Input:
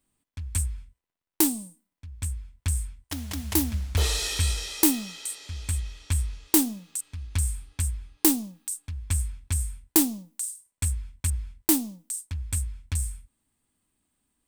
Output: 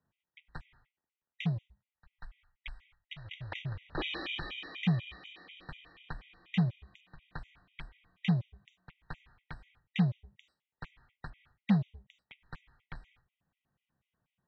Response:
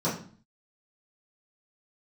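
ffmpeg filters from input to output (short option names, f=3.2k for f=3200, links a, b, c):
-filter_complex "[0:a]asplit=3[a][b][c];[a]afade=t=out:st=1.65:d=0.02[d];[b]equalizer=f=125:t=o:w=1:g=9,equalizer=f=250:t=o:w=1:g=-10,equalizer=f=500:t=o:w=1:g=-11,afade=t=in:st=1.65:d=0.02,afade=t=out:st=3.24:d=0.02[e];[c]afade=t=in:st=3.24:d=0.02[f];[d][e][f]amix=inputs=3:normalize=0,highpass=f=150:t=q:w=0.5412,highpass=f=150:t=q:w=1.307,lowpass=f=3.3k:t=q:w=0.5176,lowpass=f=3.3k:t=q:w=0.7071,lowpass=f=3.3k:t=q:w=1.932,afreqshift=-110,afftfilt=real='re*gt(sin(2*PI*4.1*pts/sr)*(1-2*mod(floor(b*sr/1024/1900),2)),0)':imag='im*gt(sin(2*PI*4.1*pts/sr)*(1-2*mod(floor(b*sr/1024/1900),2)),0)':win_size=1024:overlap=0.75"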